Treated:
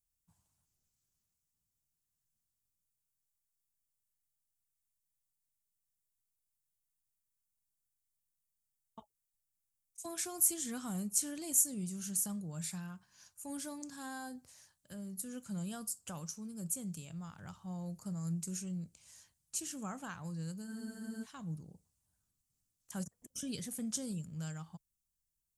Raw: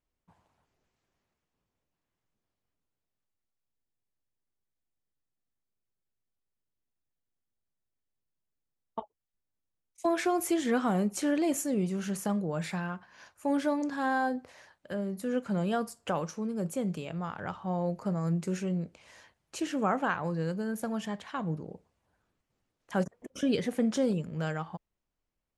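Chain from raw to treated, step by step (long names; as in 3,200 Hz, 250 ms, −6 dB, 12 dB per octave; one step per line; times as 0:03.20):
drawn EQ curve 140 Hz 0 dB, 460 Hz −16 dB, 1,300 Hz −10 dB, 2,000 Hz −11 dB, 3,900 Hz −1 dB, 8,100 Hz +14 dB
frozen spectrum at 0:20.70, 0.54 s
level −5 dB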